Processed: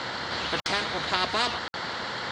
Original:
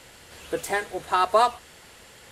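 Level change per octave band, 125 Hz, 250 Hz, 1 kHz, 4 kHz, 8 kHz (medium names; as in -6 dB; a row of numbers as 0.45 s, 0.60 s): +7.5 dB, +1.5 dB, -5.5 dB, +9.5 dB, -2.5 dB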